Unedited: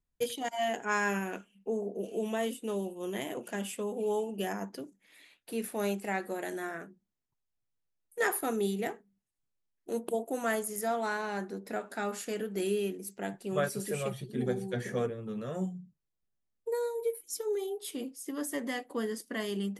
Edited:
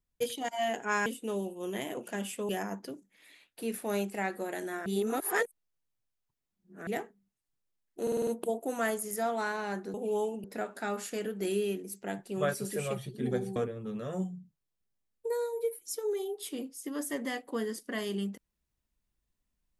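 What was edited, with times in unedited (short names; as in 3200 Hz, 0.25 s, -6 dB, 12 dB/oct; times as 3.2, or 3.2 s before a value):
1.06–2.46 cut
3.89–4.39 move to 11.59
6.76–8.77 reverse
9.92 stutter 0.05 s, 6 plays
14.71–14.98 cut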